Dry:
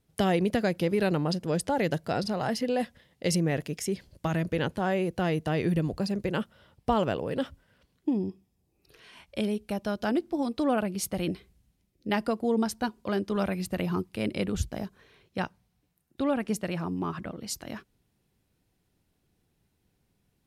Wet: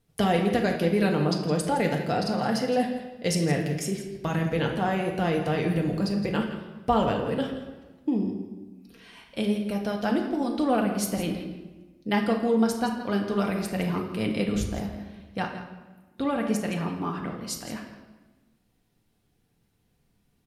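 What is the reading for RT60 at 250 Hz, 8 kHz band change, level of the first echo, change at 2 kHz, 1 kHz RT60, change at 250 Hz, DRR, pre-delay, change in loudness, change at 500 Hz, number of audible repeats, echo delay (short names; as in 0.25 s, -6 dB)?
1.6 s, +2.0 dB, -12.5 dB, +2.5 dB, 1.2 s, +3.0 dB, 0.5 dB, 4 ms, +2.5 dB, +2.0 dB, 1, 0.166 s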